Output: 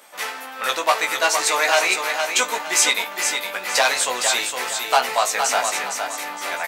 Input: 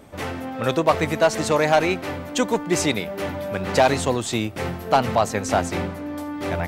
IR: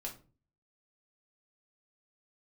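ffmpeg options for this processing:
-filter_complex "[0:a]highpass=1k,highshelf=f=5.1k:g=6.5,asplit=2[a][b];[b]adelay=16,volume=-4.5dB[c];[a][c]amix=inputs=2:normalize=0,aecho=1:1:462|924|1386|1848:0.501|0.165|0.0546|0.018,asplit=2[d][e];[1:a]atrim=start_sample=2205[f];[e][f]afir=irnorm=-1:irlink=0,volume=-5dB[g];[d][g]amix=inputs=2:normalize=0,volume=1.5dB"

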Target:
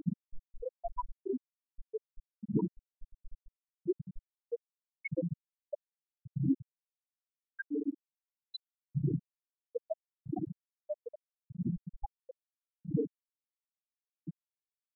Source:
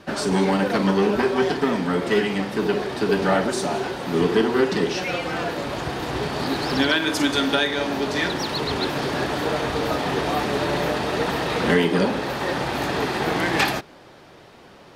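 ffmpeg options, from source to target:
-filter_complex "[0:a]bandreject=f=1.1k:w=13,acrossover=split=820|3700[a][b][c];[c]acontrast=73[d];[a][b][d]amix=inputs=3:normalize=0,alimiter=limit=-13.5dB:level=0:latency=1:release=138,equalizer=f=170:w=0.57:g=7,bandreject=f=60:t=h:w=6,bandreject=f=120:t=h:w=6,bandreject=f=180:t=h:w=6,aeval=exprs='(mod(4.22*val(0)+1,2)-1)/4.22':c=same,acompressor=threshold=-36dB:ratio=16,aecho=1:1:6.3:0.38,asoftclip=type=tanh:threshold=-29.5dB,aphaser=in_gain=1:out_gain=1:delay=2.1:decay=0.71:speed=0.77:type=triangular,asplit=2[e][f];[f]adelay=741,lowpass=f=2k:p=1,volume=-14dB,asplit=2[g][h];[h]adelay=741,lowpass=f=2k:p=1,volume=0.48,asplit=2[i][j];[j]adelay=741,lowpass=f=2k:p=1,volume=0.48,asplit=2[k][l];[l]adelay=741,lowpass=f=2k:p=1,volume=0.48,asplit=2[m][n];[n]adelay=741,lowpass=f=2k:p=1,volume=0.48[o];[e][g][i][k][m][o]amix=inputs=6:normalize=0,afftfilt=real='re*gte(hypot(re,im),0.178)':imag='im*gte(hypot(re,im),0.178)':win_size=1024:overlap=0.75,volume=5.5dB"

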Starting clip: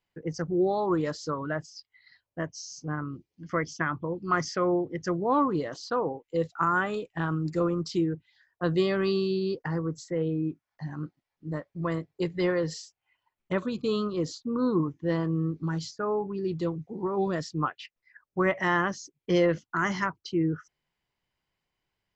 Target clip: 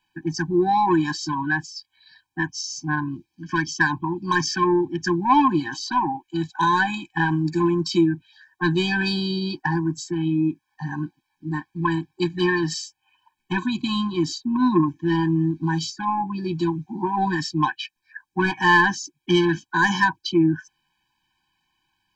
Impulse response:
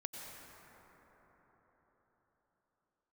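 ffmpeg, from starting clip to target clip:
-filter_complex "[0:a]asplit=2[a][b];[b]highpass=f=720:p=1,volume=12dB,asoftclip=type=tanh:threshold=-12.5dB[c];[a][c]amix=inputs=2:normalize=0,lowpass=f=6.6k:p=1,volume=-6dB,afftfilt=real='re*eq(mod(floor(b*sr/1024/370),2),0)':imag='im*eq(mod(floor(b*sr/1024/370),2),0)':win_size=1024:overlap=0.75,volume=8.5dB"

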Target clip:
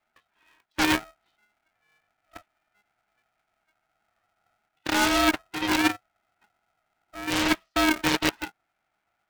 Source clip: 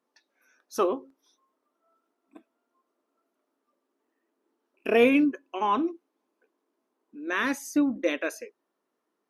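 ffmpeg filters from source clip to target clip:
-filter_complex "[0:a]afftfilt=real='real(if(lt(b,1008),b+24*(1-2*mod(floor(b/24),2)),b),0)':imag='imag(if(lt(b,1008),b+24*(1-2*mod(floor(b/24),2)),b),0)':win_size=2048:overlap=0.75,asplit=2[a][b];[b]alimiter=limit=-16.5dB:level=0:latency=1:release=105,volume=0.5dB[c];[a][c]amix=inputs=2:normalize=0,highpass=f=430:t=q:w=0.5412,highpass=f=430:t=q:w=1.307,lowpass=f=3k:t=q:w=0.5176,lowpass=f=3k:t=q:w=0.7071,lowpass=f=3k:t=q:w=1.932,afreqshift=180,aeval=exprs='0.501*(cos(1*acos(clip(val(0)/0.501,-1,1)))-cos(1*PI/2))+0.00501*(cos(2*acos(clip(val(0)/0.501,-1,1)))-cos(2*PI/2))+0.00794*(cos(6*acos(clip(val(0)/0.501,-1,1)))-cos(6*PI/2))+0.1*(cos(7*acos(clip(val(0)/0.501,-1,1)))-cos(7*PI/2))+0.112*(cos(8*acos(clip(val(0)/0.501,-1,1)))-cos(8*PI/2))':c=same,areverse,acompressor=threshold=-25dB:ratio=10,areverse,aeval=exprs='val(0)*sgn(sin(2*PI*310*n/s))':c=same,volume=6dB"

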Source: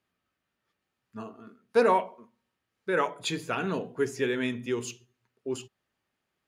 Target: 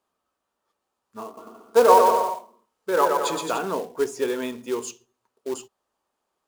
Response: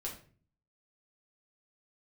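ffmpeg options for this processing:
-filter_complex "[0:a]equalizer=f=125:t=o:w=1:g=-12,equalizer=f=500:t=o:w=1:g=5,equalizer=f=1k:t=o:w=1:g=10,equalizer=f=2k:t=o:w=1:g=-8,equalizer=f=8k:t=o:w=1:g=6,acrusher=bits=4:mode=log:mix=0:aa=0.000001,asettb=1/sr,asplit=3[a][b][c];[a]atrim=end=1.254[d];[b]atrim=start=1.25:end=3.59,asetpts=PTS-STARTPTS,afade=t=in:d=0.004:c=qsin,afade=t=out:st=2.336:d=0.004:c=qsin,aecho=1:1:120|216|292.8|354.2|403.4:0.631|0.398|0.251|0.158|0.1,atrim=end_sample=103194[e];[c]atrim=start=3.586[f];[d][e]acrossfade=d=0.004:c1=hsin:c2=qsin[g];[g][f]acrossfade=d=0.004:c1=qsin:c2=hsin"

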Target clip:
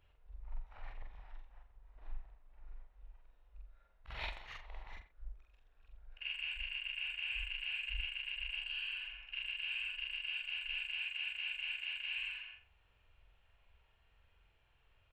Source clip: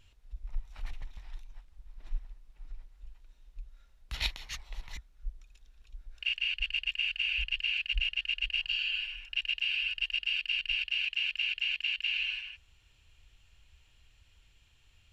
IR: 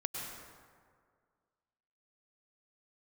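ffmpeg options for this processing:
-filter_complex "[0:a]afftfilt=real='re':imag='-im':win_size=4096:overlap=0.75,firequalizer=gain_entry='entry(290,0);entry(450,9);entry(730,10);entry(4400,-10);entry(6700,-18)':delay=0.05:min_phase=1,asplit=2[a][b];[b]adelay=90,highpass=300,lowpass=3.4k,asoftclip=type=hard:threshold=-34dB,volume=-13dB[c];[a][c]amix=inputs=2:normalize=0,volume=-3.5dB"

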